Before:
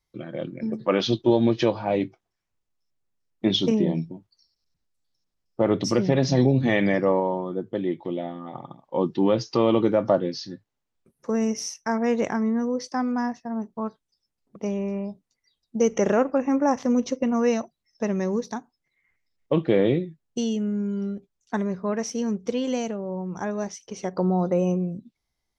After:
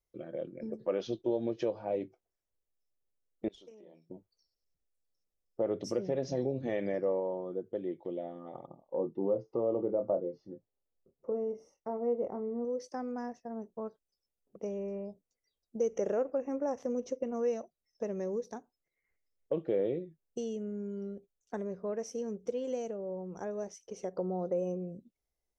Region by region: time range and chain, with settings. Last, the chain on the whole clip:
0:03.48–0:04.10: downward compressor 12 to 1, threshold −31 dBFS + high-pass filter 1,100 Hz 6 dB per octave + tube saturation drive 20 dB, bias 0.5
0:08.66–0:12.65: Savitzky-Golay smoothing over 65 samples + double-tracking delay 25 ms −8 dB
whole clip: graphic EQ with 10 bands 125 Hz −7 dB, 250 Hz −5 dB, 500 Hz +7 dB, 1,000 Hz −7 dB, 2,000 Hz −5 dB, 4,000 Hz −10 dB; downward compressor 1.5 to 1, threshold −32 dBFS; level −6 dB

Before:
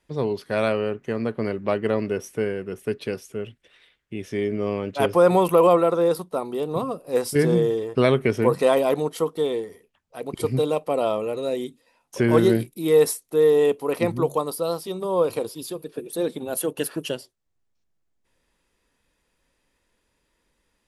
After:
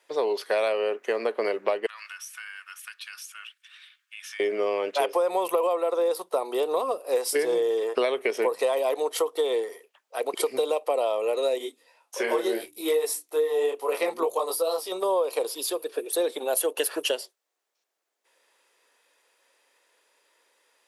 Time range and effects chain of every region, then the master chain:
0:01.86–0:04.40: Butterworth high-pass 1,200 Hz + notch filter 2,000 Hz, Q 10 + downward compressor 5 to 1, threshold −43 dBFS
0:11.58–0:14.92: mains-hum notches 60/120/180/240/300/360 Hz + micro pitch shift up and down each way 25 cents
whole clip: high-pass filter 440 Hz 24 dB per octave; dynamic equaliser 1,400 Hz, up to −7 dB, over −44 dBFS, Q 3.2; downward compressor 12 to 1, threshold −28 dBFS; level +7 dB

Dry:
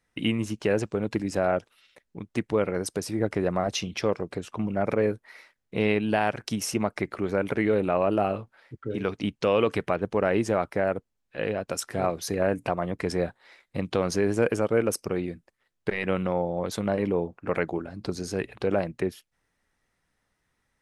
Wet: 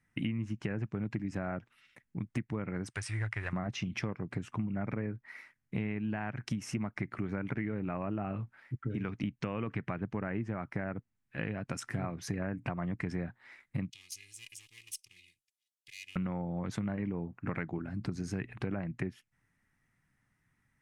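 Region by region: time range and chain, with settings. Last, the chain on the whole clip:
0:02.90–0:03.53: mu-law and A-law mismatch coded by A + drawn EQ curve 110 Hz 0 dB, 170 Hz −20 dB, 250 Hz −19 dB, 400 Hz −10 dB, 1,200 Hz +3 dB, 1,800 Hz +7 dB, 3,500 Hz +8 dB, 6,700 Hz +1 dB, 9,400 Hz +8 dB, 14,000 Hz −28 dB
0:13.90–0:16.16: lower of the sound and its delayed copy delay 2.4 ms + inverse Chebyshev high-pass filter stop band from 1,600 Hz
whole clip: treble cut that deepens with the level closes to 2,300 Hz, closed at −19.5 dBFS; graphic EQ with 10 bands 125 Hz +11 dB, 250 Hz +5 dB, 500 Hz −9 dB, 2,000 Hz +6 dB, 4,000 Hz −8 dB; downward compressor, threshold −28 dBFS; level −3.5 dB

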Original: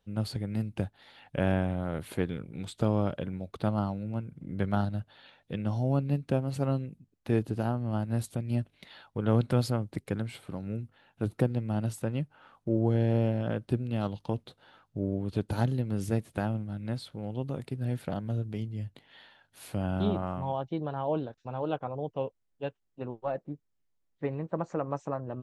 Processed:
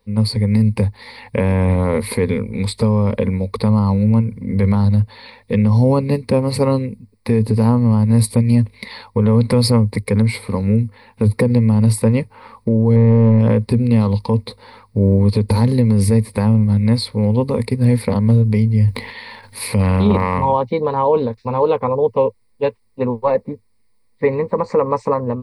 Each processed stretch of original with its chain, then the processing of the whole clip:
0:12.96–0:13.39: power curve on the samples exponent 0.7 + high-frequency loss of the air 420 metres + highs frequency-modulated by the lows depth 0.12 ms
0:18.84–0:20.45: dynamic equaliser 2,600 Hz, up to +5 dB, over −59 dBFS, Q 1.7 + transient designer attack +4 dB, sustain +12 dB
whole clip: EQ curve with evenly spaced ripples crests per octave 0.92, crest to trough 16 dB; automatic gain control gain up to 7 dB; brickwall limiter −14.5 dBFS; level +8.5 dB

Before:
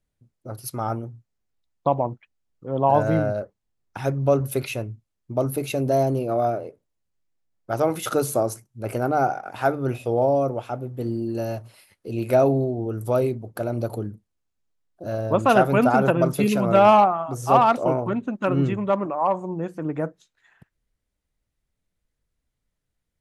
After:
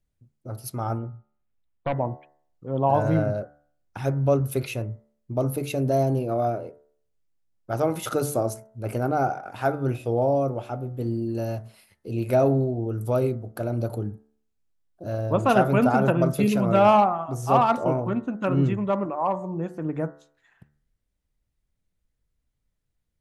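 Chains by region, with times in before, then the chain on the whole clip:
0:00.98–0:01.97: gain into a clipping stage and back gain 18.5 dB + low-pass filter 3,200 Hz 24 dB per octave
whole clip: low-shelf EQ 210 Hz +6 dB; hum removal 73.13 Hz, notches 28; level −3 dB

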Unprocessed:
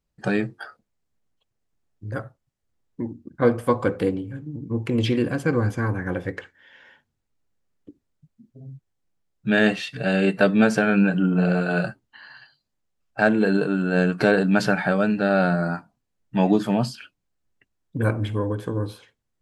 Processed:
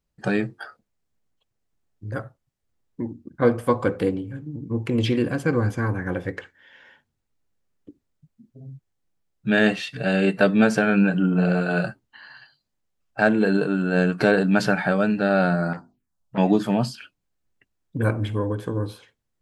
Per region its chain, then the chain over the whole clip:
0:15.73–0:16.38: mains-hum notches 50/100/150/200/250/300/350/400/450/500 Hz + phaser swept by the level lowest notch 260 Hz, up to 2,600 Hz, full sweep at −34.5 dBFS + saturating transformer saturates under 910 Hz
whole clip: no processing

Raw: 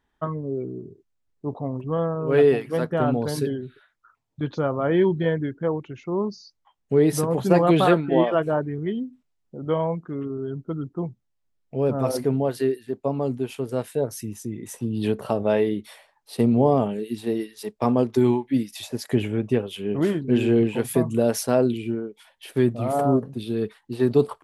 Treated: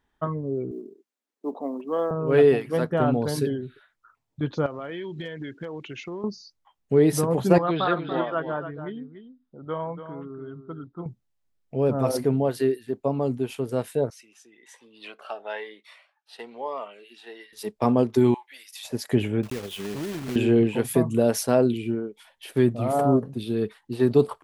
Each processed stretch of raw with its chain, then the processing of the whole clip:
0:00.71–0:02.11: Butterworth high-pass 220 Hz 48 dB per octave + floating-point word with a short mantissa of 6 bits
0:04.66–0:06.24: meter weighting curve D + downward compressor 16 to 1, threshold −30 dBFS + hard clipping −24.5 dBFS
0:07.58–0:11.06: Chebyshev low-pass with heavy ripple 5,100 Hz, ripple 9 dB + single-tap delay 286 ms −10.5 dB
0:14.10–0:17.53: band-pass filter 790–2,000 Hz + spectral tilt +4 dB per octave + phaser whose notches keep moving one way rising 1.1 Hz
0:18.34–0:18.85: high-pass filter 920 Hz 24 dB per octave + downward compressor 1.5 to 1, threshold −42 dBFS
0:19.43–0:20.36: one scale factor per block 3 bits + downward compressor 4 to 1, threshold −29 dBFS
whole clip: no processing

